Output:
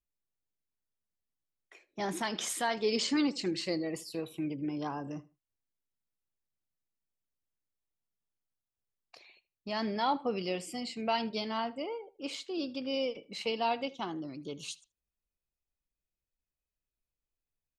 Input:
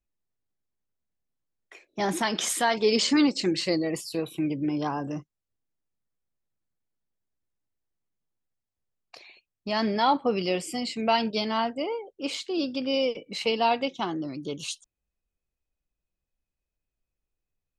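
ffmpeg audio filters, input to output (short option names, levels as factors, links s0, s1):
-filter_complex "[0:a]asplit=2[s0][s1];[s1]adelay=78,lowpass=f=3800:p=1,volume=0.106,asplit=2[s2][s3];[s3]adelay=78,lowpass=f=3800:p=1,volume=0.21[s4];[s0][s2][s4]amix=inputs=3:normalize=0,volume=0.422"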